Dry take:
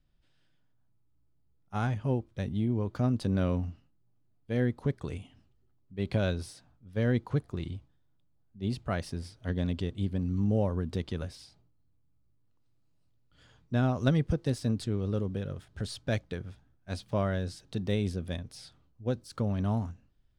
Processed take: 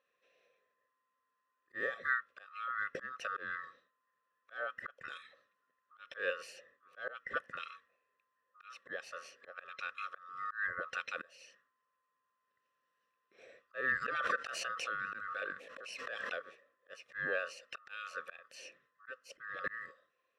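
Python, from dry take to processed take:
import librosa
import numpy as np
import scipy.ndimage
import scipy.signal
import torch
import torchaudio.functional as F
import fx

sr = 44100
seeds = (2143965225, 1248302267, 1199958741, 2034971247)

y = fx.band_swap(x, sr, width_hz=1000)
y = fx.vowel_filter(y, sr, vowel='e')
y = fx.bass_treble(y, sr, bass_db=9, treble_db=5)
y = fx.auto_swell(y, sr, attack_ms=302.0)
y = fx.pre_swell(y, sr, db_per_s=27.0, at=(14.01, 16.4), fade=0.02)
y = y * librosa.db_to_amplitude(15.5)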